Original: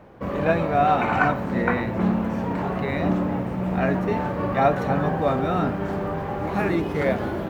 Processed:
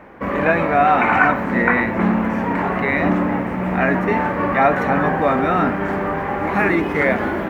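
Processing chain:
octave-band graphic EQ 125/250/1,000/2,000/4,000 Hz −6/+5/+4/+11/−4 dB
in parallel at +2 dB: brickwall limiter −10 dBFS, peak gain reduction 10.5 dB
on the sum: level −4.5 dB

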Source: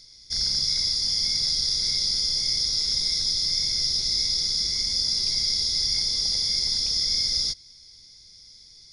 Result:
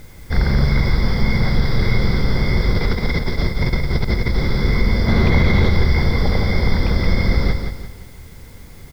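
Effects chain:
0:05.07–0:05.69: ceiling on every frequency bin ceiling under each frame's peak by 15 dB
low-pass filter 1,700 Hz 24 dB per octave
0:02.73–0:04.36: compressor whose output falls as the input rises −43 dBFS, ratio −0.5
background noise white −77 dBFS
repeating echo 173 ms, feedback 39%, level −6.5 dB
boost into a limiter +29 dB
level −4 dB

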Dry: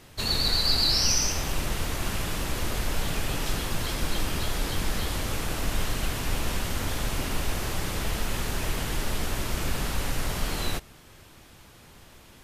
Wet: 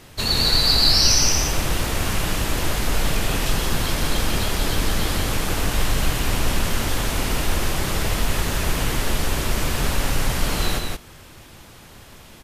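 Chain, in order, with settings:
single-tap delay 173 ms −4 dB
level +5.5 dB

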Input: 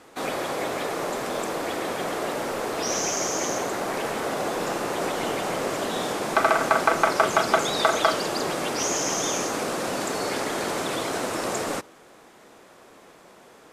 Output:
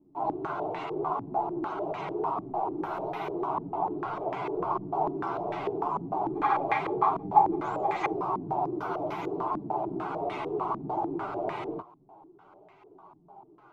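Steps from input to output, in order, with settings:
partials spread apart or drawn together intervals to 124%
phaser with its sweep stopped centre 350 Hz, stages 8
low-pass on a step sequencer 6.7 Hz 240–2,000 Hz

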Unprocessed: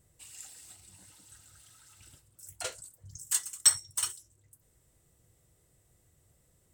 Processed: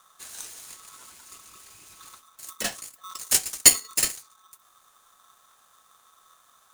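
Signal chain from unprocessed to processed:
regular buffer underruns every 0.80 s, samples 1,024, repeat, from 0:00.69
ring modulator with a square carrier 1,200 Hz
level +8 dB

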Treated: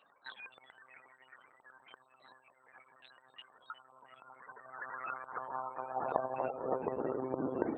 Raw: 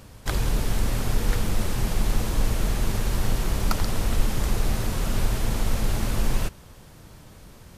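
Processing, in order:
variable-slope delta modulation 64 kbit/s
in parallel at −5 dB: soft clipping −24.5 dBFS, distortion −9 dB
on the sum: feedback delay with all-pass diffusion 596 ms, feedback 45%, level −12 dB
downward compressor 12 to 1, threshold −29 dBFS, peak gain reduction 17 dB
spectral peaks only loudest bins 32
hum removal 48.05 Hz, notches 3
one-pitch LPC vocoder at 8 kHz 130 Hz
high-pass filter sweep 3,000 Hz → 330 Hz, 0:03.77–0:07.36
level +8.5 dB

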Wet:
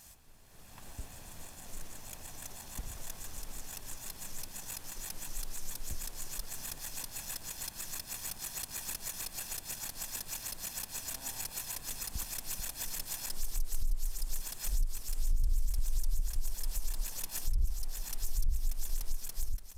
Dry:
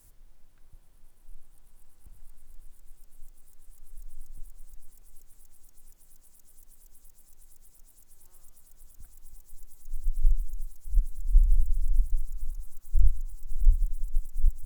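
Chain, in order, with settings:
lower of the sound and its delayed copy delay 0.87 ms
high-pass filter 130 Hz 6 dB per octave
downward compressor 1.5 to 1, threshold −56 dBFS, peak gain reduction 11.5 dB
brickwall limiter −43 dBFS, peak gain reduction 11 dB
automatic gain control gain up to 14.5 dB
wrong playback speed 45 rpm record played at 33 rpm
level +6.5 dB

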